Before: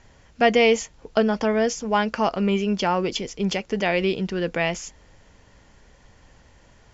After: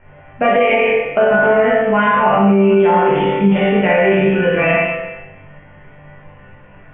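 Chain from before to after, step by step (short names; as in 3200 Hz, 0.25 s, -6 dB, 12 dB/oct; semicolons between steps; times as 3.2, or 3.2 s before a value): steep low-pass 2800 Hz 72 dB/oct; bell 600 Hz +6.5 dB 0.4 oct, from 1.31 s 180 Hz; resonator bank G2 sus4, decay 0.74 s; reverb RT60 1.0 s, pre-delay 13 ms, DRR -5.5 dB; maximiser +28 dB; gain -3.5 dB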